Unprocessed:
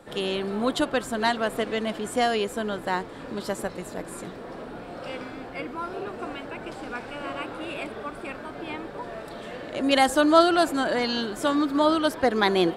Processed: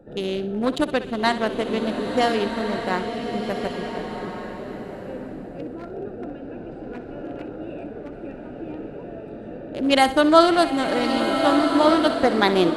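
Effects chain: Wiener smoothing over 41 samples; thinning echo 63 ms, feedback 38%, level -13.5 dB; bloom reverb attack 1.45 s, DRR 4.5 dB; gain +3.5 dB

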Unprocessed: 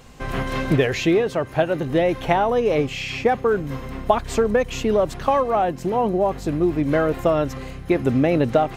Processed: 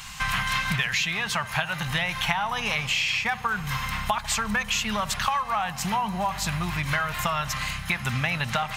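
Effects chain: EQ curve 210 Hz 0 dB, 290 Hz -25 dB, 520 Hz -16 dB, 920 Hz +8 dB, 2700 Hz +14 dB; compressor 6:1, threshold -23 dBFS, peak gain reduction 14 dB; dark delay 73 ms, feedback 77%, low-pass 1100 Hz, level -16 dB

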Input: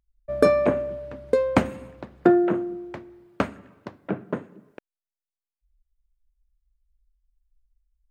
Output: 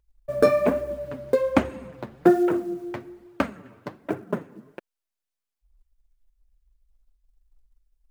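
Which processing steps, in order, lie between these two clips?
short-mantissa float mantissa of 4-bit; 1.35–1.93 high shelf 8400 Hz -7 dB; in parallel at -0.5 dB: compressor, threshold -34 dBFS, peak gain reduction 20 dB; on the sum: flange 1.2 Hz, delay 2 ms, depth 7.1 ms, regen -3%; gain +1 dB

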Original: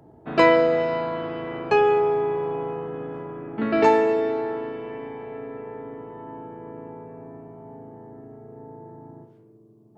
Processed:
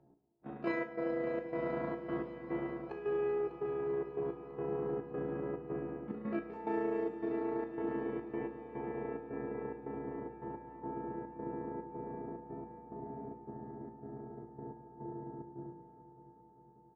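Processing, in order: gate -43 dBFS, range -13 dB; LPF 1100 Hz 6 dB/oct; bell 270 Hz +3.5 dB 1.1 oct; comb 5.5 ms, depth 43%; de-hum 165.9 Hz, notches 9; reverse; compressor 8:1, threshold -29 dBFS, peak gain reduction 16 dB; reverse; granular stretch 1.7×, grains 71 ms; step gate "x..xxx.xxx.xxx." 108 bpm -12 dB; resonator 57 Hz, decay 0.37 s, harmonics all, mix 70%; on a send: multi-head echo 0.199 s, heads second and third, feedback 70%, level -14 dB; on the sum: gain +4 dB

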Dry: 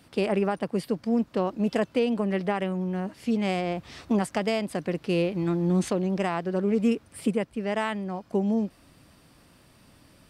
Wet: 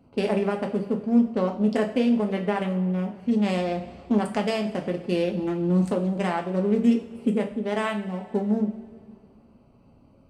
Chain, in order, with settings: Wiener smoothing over 25 samples; two-slope reverb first 0.36 s, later 2.3 s, from -18 dB, DRR 2 dB

